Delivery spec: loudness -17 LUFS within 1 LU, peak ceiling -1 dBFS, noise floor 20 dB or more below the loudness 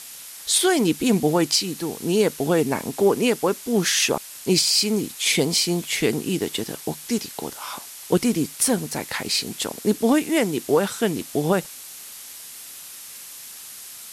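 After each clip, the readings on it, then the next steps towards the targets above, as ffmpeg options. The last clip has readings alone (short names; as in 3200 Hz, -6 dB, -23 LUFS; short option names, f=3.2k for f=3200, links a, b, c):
noise floor -40 dBFS; noise floor target -42 dBFS; loudness -22.0 LUFS; peak -7.0 dBFS; loudness target -17.0 LUFS
-> -af "afftdn=nr=6:nf=-40"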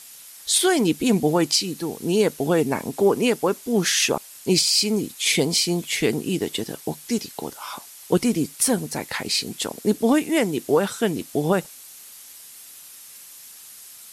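noise floor -44 dBFS; loudness -22.0 LUFS; peak -7.0 dBFS; loudness target -17.0 LUFS
-> -af "volume=5dB"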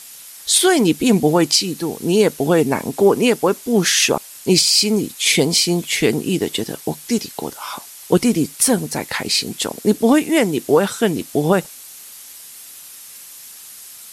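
loudness -17.0 LUFS; peak -2.0 dBFS; noise floor -39 dBFS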